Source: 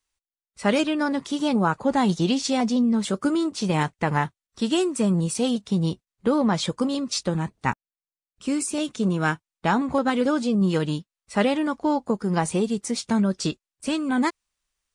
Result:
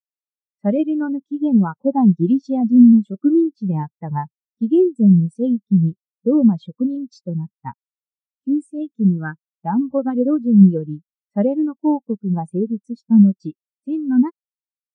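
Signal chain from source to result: spectral expander 2.5:1; gain +7.5 dB

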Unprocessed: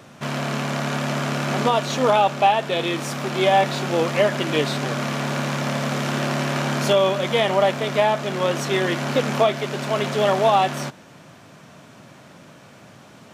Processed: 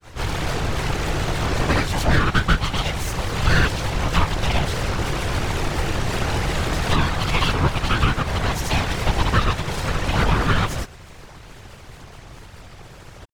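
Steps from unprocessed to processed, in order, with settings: full-wave rectifier; grains 0.162 s, grains 14/s, pitch spread up and down by 3 st; whisperiser; in parallel at +2 dB: compressor, threshold -30 dBFS, peak gain reduction 15.5 dB

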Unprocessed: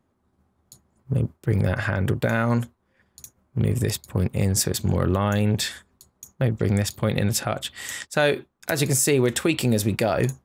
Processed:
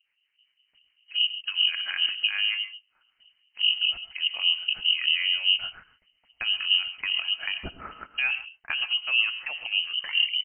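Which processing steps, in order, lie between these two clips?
tape stop at the end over 0.67 s; treble ducked by the level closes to 1100 Hz, closed at -18 dBFS; pitch shift -2 st; low-pass opened by the level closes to 2200 Hz, open at -19.5 dBFS; harmonic tremolo 4.9 Hz, depth 100%, crossover 460 Hz; non-linear reverb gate 0.16 s rising, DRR 11 dB; inverted band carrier 3000 Hz

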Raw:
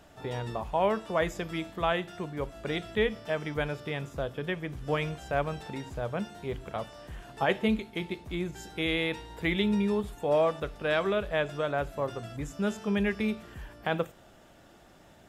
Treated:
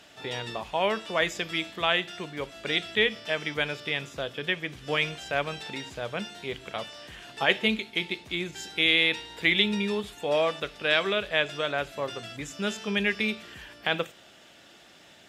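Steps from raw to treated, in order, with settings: weighting filter D

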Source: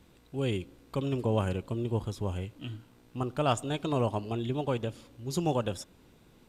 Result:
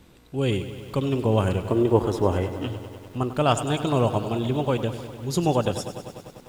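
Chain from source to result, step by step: spectral gain 1.69–2.67, 250–2100 Hz +8 dB; lo-fi delay 99 ms, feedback 80%, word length 9-bit, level -12.5 dB; gain +6.5 dB

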